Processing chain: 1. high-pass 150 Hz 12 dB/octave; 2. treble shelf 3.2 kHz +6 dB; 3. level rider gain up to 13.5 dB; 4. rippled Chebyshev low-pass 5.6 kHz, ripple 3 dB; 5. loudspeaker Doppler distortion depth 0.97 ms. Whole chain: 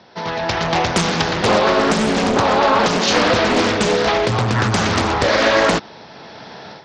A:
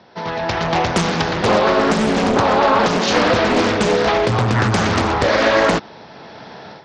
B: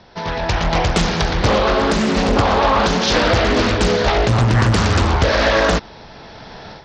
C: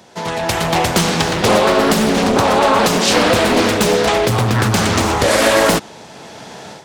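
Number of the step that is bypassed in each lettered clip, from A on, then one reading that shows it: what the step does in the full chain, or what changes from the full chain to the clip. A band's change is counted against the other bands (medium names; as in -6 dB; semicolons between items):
2, 8 kHz band -4.0 dB; 1, 125 Hz band +6.0 dB; 4, 8 kHz band +4.0 dB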